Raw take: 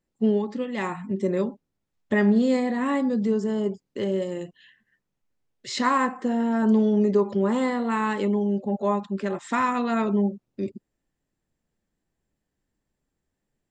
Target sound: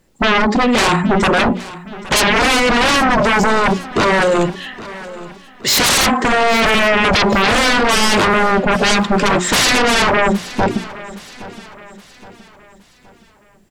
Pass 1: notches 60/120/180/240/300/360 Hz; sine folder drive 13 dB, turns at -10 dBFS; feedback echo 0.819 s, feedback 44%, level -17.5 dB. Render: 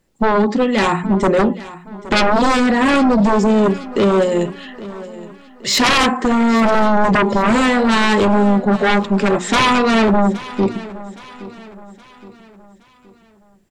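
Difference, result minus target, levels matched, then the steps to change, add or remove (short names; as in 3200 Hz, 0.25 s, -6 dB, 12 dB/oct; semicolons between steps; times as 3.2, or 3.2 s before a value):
sine folder: distortion -23 dB
change: sine folder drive 20 dB, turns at -10 dBFS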